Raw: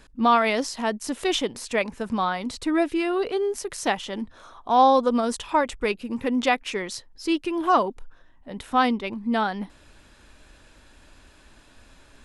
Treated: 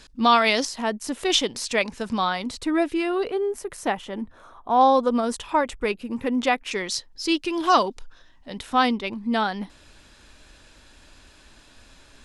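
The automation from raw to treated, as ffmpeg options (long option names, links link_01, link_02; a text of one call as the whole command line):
ffmpeg -i in.wav -af "asetnsamples=nb_out_samples=441:pad=0,asendcmd='0.65 equalizer g 0;1.3 equalizer g 8.5;2.42 equalizer g 0.5;3.3 equalizer g -9;4.81 equalizer g -1.5;6.71 equalizer g 8.5;7.5 equalizer g 14.5;8.58 equalizer g 5.5',equalizer=frequency=4900:width_type=o:width=1.7:gain=11.5" out.wav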